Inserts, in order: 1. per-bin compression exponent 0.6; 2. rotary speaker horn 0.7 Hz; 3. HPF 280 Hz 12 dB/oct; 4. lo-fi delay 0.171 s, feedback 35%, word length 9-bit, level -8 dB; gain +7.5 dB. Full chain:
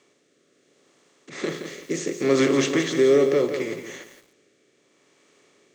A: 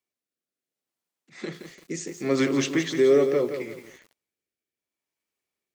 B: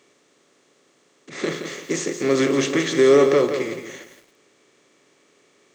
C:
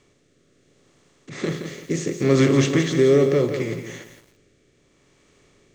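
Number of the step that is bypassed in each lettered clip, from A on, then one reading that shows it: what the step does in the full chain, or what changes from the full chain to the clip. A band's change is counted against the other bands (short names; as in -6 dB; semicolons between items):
1, momentary loudness spread change +2 LU; 2, 1 kHz band +2.5 dB; 3, loudness change +2.0 LU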